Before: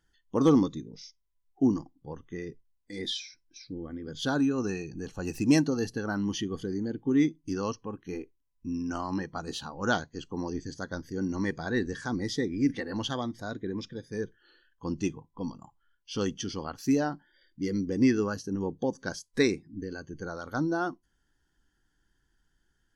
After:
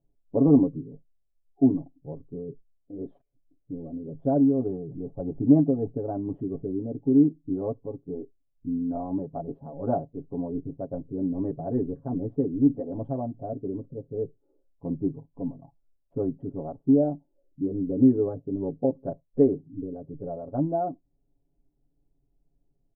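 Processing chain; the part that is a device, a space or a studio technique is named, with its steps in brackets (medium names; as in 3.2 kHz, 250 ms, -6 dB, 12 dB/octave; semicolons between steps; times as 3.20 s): local Wiener filter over 25 samples; under water (low-pass 670 Hz 24 dB/octave; peaking EQ 640 Hz +11 dB 0.38 oct); comb 7.2 ms, depth 92%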